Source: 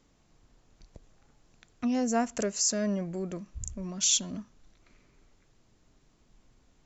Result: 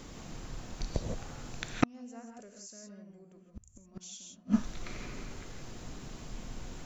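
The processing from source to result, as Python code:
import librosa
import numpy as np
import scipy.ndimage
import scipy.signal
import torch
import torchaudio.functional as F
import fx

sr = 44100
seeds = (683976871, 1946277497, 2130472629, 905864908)

y = fx.rev_gated(x, sr, seeds[0], gate_ms=190, shape='rising', drr_db=1.5)
y = fx.gate_flip(y, sr, shuts_db=-29.0, range_db=-41)
y = y * librosa.db_to_amplitude(18.0)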